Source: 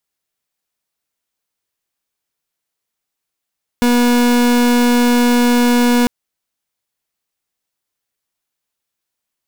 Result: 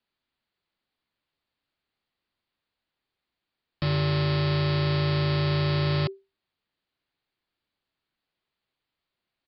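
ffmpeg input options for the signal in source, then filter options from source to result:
-f lavfi -i "aevalsrc='0.251*(2*lt(mod(242*t,1),0.38)-1)':duration=2.25:sample_rate=44100"
-af "aresample=11025,aeval=exprs='0.0944*(abs(mod(val(0)/0.0944+3,4)-2)-1)':channel_layout=same,aresample=44100,afreqshift=-390"

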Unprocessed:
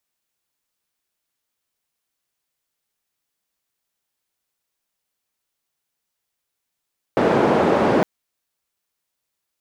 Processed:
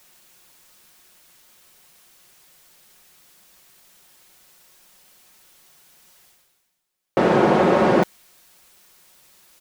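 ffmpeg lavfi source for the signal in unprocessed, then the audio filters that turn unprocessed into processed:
-f lavfi -i "anoisesrc=color=white:duration=0.86:sample_rate=44100:seed=1,highpass=frequency=190,lowpass=frequency=600,volume=4.6dB"
-af "aecho=1:1:5.5:0.41,areverse,acompressor=mode=upward:threshold=-33dB:ratio=2.5,areverse"

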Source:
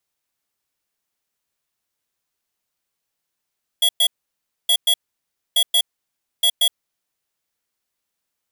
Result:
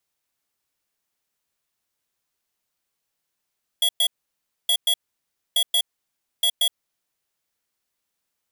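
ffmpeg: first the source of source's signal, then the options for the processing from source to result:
-f lavfi -i "aevalsrc='0.168*(2*lt(mod(3340*t,1),0.5)-1)*clip(min(mod(mod(t,0.87),0.18),0.07-mod(mod(t,0.87),0.18))/0.005,0,1)*lt(mod(t,0.87),0.36)':duration=3.48:sample_rate=44100"
-af "acompressor=threshold=-22dB:ratio=2.5"

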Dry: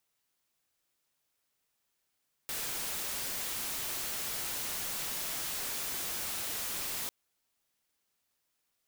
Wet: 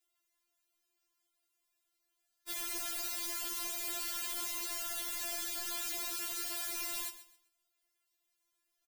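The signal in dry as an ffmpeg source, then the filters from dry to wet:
-f lavfi -i "anoisesrc=color=white:amplitude=0.0259:duration=4.6:sample_rate=44100:seed=1"
-af "aecho=1:1:131|262|393:0.2|0.0539|0.0145,afftfilt=real='re*4*eq(mod(b,16),0)':imag='im*4*eq(mod(b,16),0)':win_size=2048:overlap=0.75"

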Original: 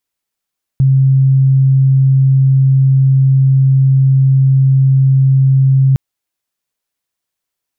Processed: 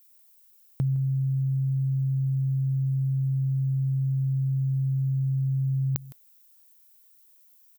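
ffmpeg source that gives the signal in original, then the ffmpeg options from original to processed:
-f lavfi -i "sine=frequency=134:duration=5.16:sample_rate=44100,volume=12.06dB"
-af "aemphasis=mode=production:type=riaa,acompressor=threshold=-23dB:ratio=5,aecho=1:1:161:0.112"

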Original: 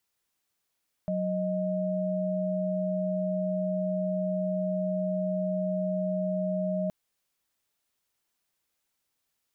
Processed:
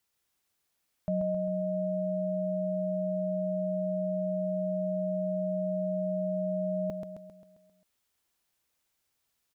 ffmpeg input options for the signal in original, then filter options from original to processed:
-f lavfi -i "aevalsrc='0.0355*(sin(2*PI*185*t)+sin(2*PI*622.25*t))':duration=5.82:sample_rate=44100"
-filter_complex "[0:a]equalizer=frequency=68:width_type=o:width=0.77:gain=4.5,asplit=2[link_01][link_02];[link_02]aecho=0:1:133|266|399|532|665|798|931:0.501|0.266|0.141|0.0746|0.0395|0.021|0.0111[link_03];[link_01][link_03]amix=inputs=2:normalize=0"

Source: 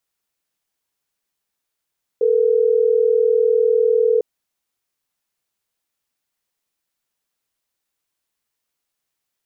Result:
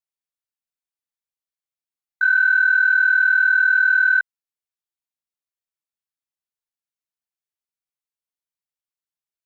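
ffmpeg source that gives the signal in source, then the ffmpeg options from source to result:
-f lavfi -i "aevalsrc='0.168*(sin(2*PI*440*t)+sin(2*PI*480*t))*clip(min(mod(t,6),2-mod(t,6))/0.005,0,1)':duration=3.12:sample_rate=44100"
-af "afftfilt=real='real(if(between(b,1,1012),(2*floor((b-1)/92)+1)*92-b,b),0)':imag='imag(if(between(b,1,1012),(2*floor((b-1)/92)+1)*92-b,b),0)*if(between(b,1,1012),-1,1)':win_size=2048:overlap=0.75,afwtdn=0.0251,equalizer=frequency=350:width_type=o:width=1.7:gain=-4.5"

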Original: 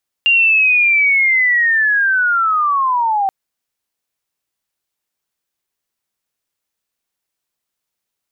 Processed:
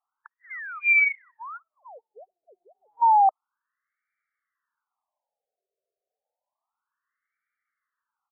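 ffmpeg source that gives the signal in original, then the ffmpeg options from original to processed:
-f lavfi -i "aevalsrc='pow(10,(-8.5-4.5*t/3.03)/20)*sin(2*PI*(2800*t-2040*t*t/(2*3.03)))':duration=3.03:sample_rate=44100"
-af "acontrast=86,aresample=11025,asoftclip=type=tanh:threshold=-15dB,aresample=44100,afftfilt=real='re*between(b*sr/1024,510*pow(1700/510,0.5+0.5*sin(2*PI*0.3*pts/sr))/1.41,510*pow(1700/510,0.5+0.5*sin(2*PI*0.3*pts/sr))*1.41)':imag='im*between(b*sr/1024,510*pow(1700/510,0.5+0.5*sin(2*PI*0.3*pts/sr))/1.41,510*pow(1700/510,0.5+0.5*sin(2*PI*0.3*pts/sr))*1.41)':win_size=1024:overlap=0.75"

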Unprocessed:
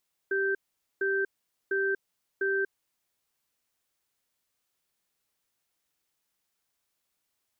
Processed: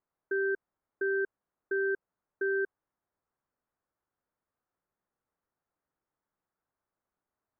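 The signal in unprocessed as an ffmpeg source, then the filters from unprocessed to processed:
-f lavfi -i "aevalsrc='0.0422*(sin(2*PI*391*t)+sin(2*PI*1560*t))*clip(min(mod(t,0.7),0.24-mod(t,0.7))/0.005,0,1)':duration=2.78:sample_rate=44100"
-af "lowpass=frequency=1500:width=0.5412,lowpass=frequency=1500:width=1.3066"

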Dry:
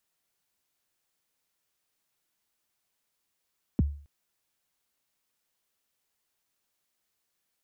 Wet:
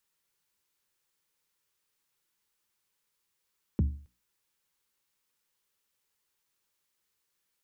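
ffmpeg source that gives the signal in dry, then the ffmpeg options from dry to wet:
-f lavfi -i "aevalsrc='0.141*pow(10,-3*t/0.44)*sin(2*PI*(320*0.023/log(72/320)*(exp(log(72/320)*min(t,0.023)/0.023)-1)+72*max(t-0.023,0)))':duration=0.27:sample_rate=44100"
-af "asuperstop=centerf=680:order=4:qfactor=3.6,equalizer=frequency=260:width=5.6:gain=-6,bandreject=frequency=60:width_type=h:width=6,bandreject=frequency=120:width_type=h:width=6,bandreject=frequency=180:width_type=h:width=6,bandreject=frequency=240:width_type=h:width=6,bandreject=frequency=300:width_type=h:width=6"

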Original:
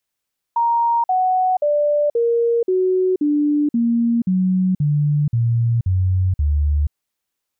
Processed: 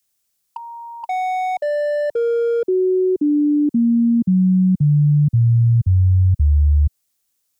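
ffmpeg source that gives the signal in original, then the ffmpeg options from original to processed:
-f lavfi -i "aevalsrc='0.2*clip(min(mod(t,0.53),0.48-mod(t,0.53))/0.005,0,1)*sin(2*PI*935*pow(2,-floor(t/0.53)/3)*mod(t,0.53))':duration=6.36:sample_rate=44100"
-filter_complex "[0:a]bass=frequency=250:gain=4,treble=frequency=4000:gain=11,bandreject=frequency=940:width=14,acrossover=split=120|410[link_01][link_02][link_03];[link_03]volume=21dB,asoftclip=hard,volume=-21dB[link_04];[link_01][link_02][link_04]amix=inputs=3:normalize=0"

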